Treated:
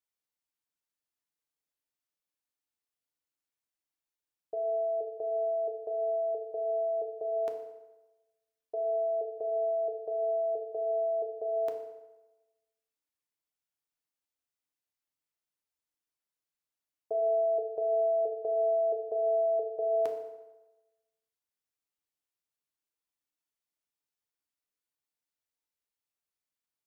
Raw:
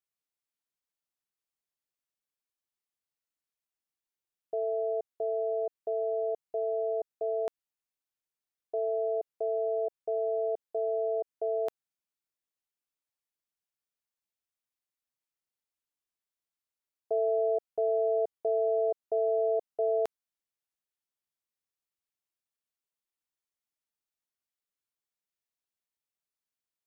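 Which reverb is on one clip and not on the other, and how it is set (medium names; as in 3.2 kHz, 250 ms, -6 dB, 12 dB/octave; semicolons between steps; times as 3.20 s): FDN reverb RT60 1.1 s, low-frequency decay 0.85×, high-frequency decay 0.75×, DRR 3.5 dB; trim -2.5 dB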